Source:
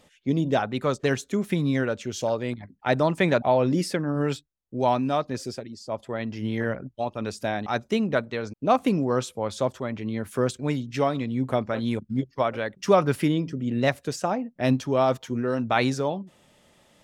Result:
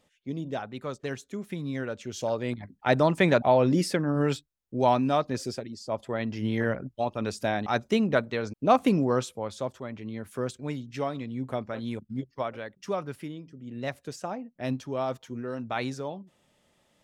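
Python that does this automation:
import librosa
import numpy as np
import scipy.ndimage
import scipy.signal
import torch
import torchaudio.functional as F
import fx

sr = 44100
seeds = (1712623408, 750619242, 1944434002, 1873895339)

y = fx.gain(x, sr, db=fx.line((1.58, -10.0), (2.62, 0.0), (9.06, 0.0), (9.59, -7.0), (12.41, -7.0), (13.46, -17.0), (13.98, -8.5)))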